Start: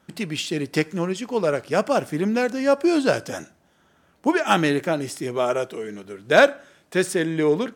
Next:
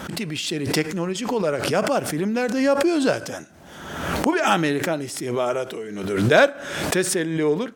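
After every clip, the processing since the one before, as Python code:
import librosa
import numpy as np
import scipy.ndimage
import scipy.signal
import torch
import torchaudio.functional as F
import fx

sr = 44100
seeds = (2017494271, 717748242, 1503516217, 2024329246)

y = fx.pre_swell(x, sr, db_per_s=45.0)
y = y * 10.0 ** (-1.5 / 20.0)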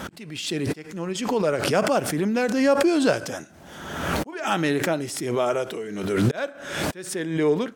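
y = fx.auto_swell(x, sr, attack_ms=495.0)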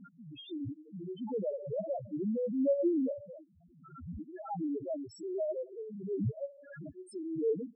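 y = fx.spec_topn(x, sr, count=1)
y = y * 10.0 ** (-4.0 / 20.0)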